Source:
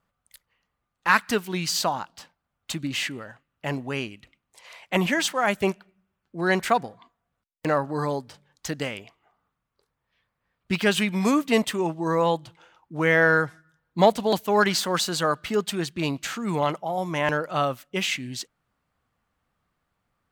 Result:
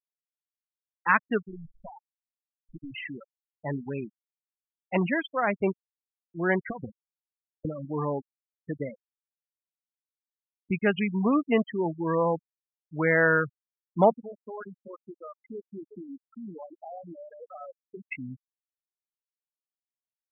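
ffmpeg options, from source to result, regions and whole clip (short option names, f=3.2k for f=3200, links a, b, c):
-filter_complex "[0:a]asettb=1/sr,asplit=3[a][b][c];[a]atrim=end=1.484[d];[b]atrim=start=1.48:end=2.93,asetpts=PTS-STARTPTS,afade=t=in:d=0.004:c=qsin,afade=t=out:st=1.446:d=0.004:c=qsin,aeval=exprs='if(lt(val(0),0),0.447*val(0),val(0))':c=same,acompressor=threshold=-32dB:ratio=6:attack=3.2:release=140:knee=1:detection=peak[e];[c]atrim=start=2.926[f];[d][e]acrossfade=d=0.004:c1=hsin:c2=qsin[g];[g][f]acrossfade=d=0.004:c1=qsin:c2=hsin,asettb=1/sr,asplit=3[h][i][j];[h]atrim=end=6.694[k];[i]atrim=start=6.69:end=7.85,asetpts=PTS-STARTPTS,afade=t=in:d=0.004:c=qsin,afade=t=out:st=1.156:d=0.004:c=qsin,acompressor=threshold=-31dB:ratio=16:attack=3.2:release=140:knee=1:detection=peak,aeval=exprs='sgn(val(0))*max(abs(val(0))-0.00119,0)':c=same,lowshelf=f=420:g=11.5[l];[j]atrim=start=7.846[m];[k][l]acrossfade=d=0.004:c1=hsin:c2=qsin[n];[n][m]acrossfade=d=0.004:c1=qsin:c2=hsin,asettb=1/sr,asplit=3[o][p][q];[o]atrim=end=14.114[r];[p]atrim=start=14.11:end=18.12,asetpts=PTS-STARTPTS,afade=t=in:d=0.004:c=qsin,afade=t=out:st=4.006:d=0.004:c=qsin,aecho=1:1:363:0.0841,atrim=end_sample=176841,acompressor=threshold=-33dB:ratio=5:attack=3.2:release=140:knee=1:detection=peak,highpass=f=180:w=0.5412,highpass=f=180:w=1.3066[s];[q]atrim=start=18.116[t];[r][s]acrossfade=d=0.004:c1=hsin:c2=qsin[u];[u][t]acrossfade=d=0.004:c1=qsin:c2=hsin,adynamicequalizer=threshold=0.01:dfrequency=790:dqfactor=3.6:tfrequency=790:tqfactor=3.6:attack=5:release=100:ratio=0.375:range=3.5:mode=cutabove:tftype=bell,lowpass=2.4k,afftfilt=real='re*gte(hypot(re,im),0.0891)':imag='im*gte(hypot(re,im),0.0891)':win_size=1024:overlap=0.75,volume=-2dB"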